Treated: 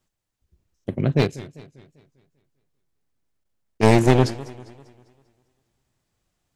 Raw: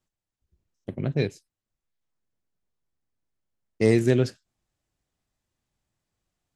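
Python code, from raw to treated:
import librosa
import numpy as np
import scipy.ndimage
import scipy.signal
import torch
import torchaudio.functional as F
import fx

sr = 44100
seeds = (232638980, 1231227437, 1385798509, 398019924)

y = np.minimum(x, 2.0 * 10.0 ** (-21.5 / 20.0) - x)
y = fx.level_steps(y, sr, step_db=10, at=(1.25, 3.83))
y = fx.echo_warbled(y, sr, ms=198, feedback_pct=47, rate_hz=2.8, cents=186, wet_db=-18.0)
y = F.gain(torch.from_numpy(y), 6.5).numpy()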